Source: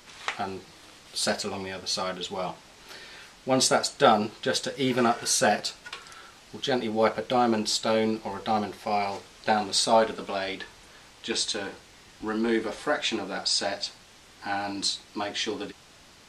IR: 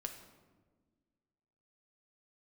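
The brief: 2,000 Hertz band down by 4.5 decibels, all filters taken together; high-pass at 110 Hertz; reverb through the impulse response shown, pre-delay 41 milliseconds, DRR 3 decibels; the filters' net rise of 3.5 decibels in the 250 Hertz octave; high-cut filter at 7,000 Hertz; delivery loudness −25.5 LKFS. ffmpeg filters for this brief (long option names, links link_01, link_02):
-filter_complex "[0:a]highpass=110,lowpass=7000,equalizer=frequency=250:width_type=o:gain=4.5,equalizer=frequency=2000:width_type=o:gain=-6.5,asplit=2[link_01][link_02];[1:a]atrim=start_sample=2205,adelay=41[link_03];[link_02][link_03]afir=irnorm=-1:irlink=0,volume=-1dB[link_04];[link_01][link_04]amix=inputs=2:normalize=0,volume=-0.5dB"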